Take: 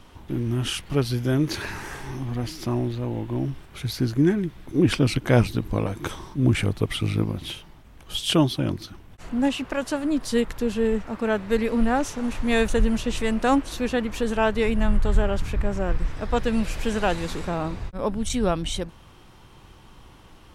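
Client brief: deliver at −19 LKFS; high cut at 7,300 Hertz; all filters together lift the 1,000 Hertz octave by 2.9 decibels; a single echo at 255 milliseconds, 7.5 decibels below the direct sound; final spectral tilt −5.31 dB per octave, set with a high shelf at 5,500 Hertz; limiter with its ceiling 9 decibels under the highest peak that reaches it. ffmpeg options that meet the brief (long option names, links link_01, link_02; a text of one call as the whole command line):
ffmpeg -i in.wav -af "lowpass=7300,equalizer=frequency=1000:width_type=o:gain=4,highshelf=frequency=5500:gain=-3,alimiter=limit=-13dB:level=0:latency=1,aecho=1:1:255:0.422,volume=6.5dB" out.wav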